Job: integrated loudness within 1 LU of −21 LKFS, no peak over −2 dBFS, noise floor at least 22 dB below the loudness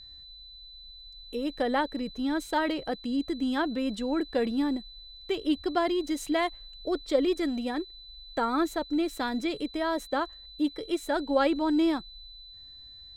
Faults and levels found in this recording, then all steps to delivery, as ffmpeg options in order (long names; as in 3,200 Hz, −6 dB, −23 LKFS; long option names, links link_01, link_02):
interfering tone 4,000 Hz; level of the tone −46 dBFS; integrated loudness −29.5 LKFS; sample peak −13.0 dBFS; target loudness −21.0 LKFS
→ -af "bandreject=frequency=4000:width=30"
-af "volume=8.5dB"